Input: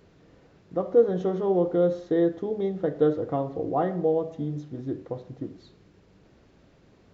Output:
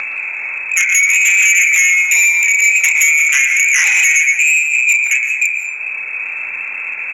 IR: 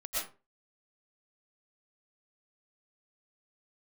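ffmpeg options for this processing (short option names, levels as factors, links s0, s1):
-filter_complex "[0:a]lowpass=f=2300:t=q:w=0.5098,lowpass=f=2300:t=q:w=0.6013,lowpass=f=2300:t=q:w=0.9,lowpass=f=2300:t=q:w=2.563,afreqshift=-2700,asplit=2[s0][s1];[s1]asoftclip=type=tanh:threshold=0.126,volume=0.335[s2];[s0][s2]amix=inputs=2:normalize=0,asplit=2[s3][s4];[s4]adelay=33,volume=0.531[s5];[s3][s5]amix=inputs=2:normalize=0,acompressor=mode=upward:threshold=0.0316:ratio=2.5,aecho=1:1:116|232|348|464|580:0.316|0.145|0.0669|0.0308|0.0142,acompressor=threshold=0.0794:ratio=10,aeval=exprs='0.168*sin(PI/2*2.51*val(0)/0.168)':c=same,highshelf=f=2100:g=10.5,bandreject=f=1200:w=24,asplit=2[s6][s7];[1:a]atrim=start_sample=2205,asetrate=31752,aresample=44100[s8];[s7][s8]afir=irnorm=-1:irlink=0,volume=0.178[s9];[s6][s9]amix=inputs=2:normalize=0"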